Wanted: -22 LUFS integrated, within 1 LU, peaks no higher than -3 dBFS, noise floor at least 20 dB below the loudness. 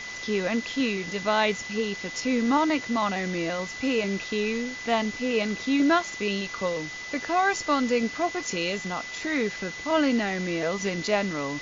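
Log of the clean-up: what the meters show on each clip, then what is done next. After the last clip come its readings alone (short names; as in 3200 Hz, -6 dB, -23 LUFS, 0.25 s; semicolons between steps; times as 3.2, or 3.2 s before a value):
steady tone 2000 Hz; tone level -36 dBFS; noise floor -37 dBFS; noise floor target -47 dBFS; loudness -26.5 LUFS; peak -10.5 dBFS; loudness target -22.0 LUFS
-> notch 2000 Hz, Q 30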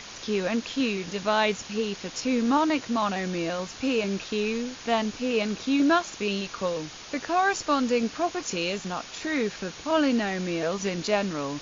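steady tone none; noise floor -43 dBFS; noise floor target -47 dBFS
-> noise print and reduce 6 dB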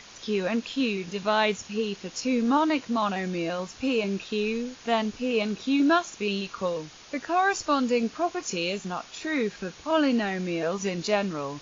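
noise floor -48 dBFS; loudness -27.0 LUFS; peak -11.0 dBFS; loudness target -22.0 LUFS
-> gain +5 dB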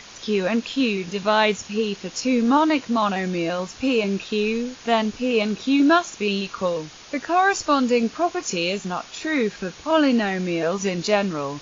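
loudness -22.0 LUFS; peak -6.0 dBFS; noise floor -43 dBFS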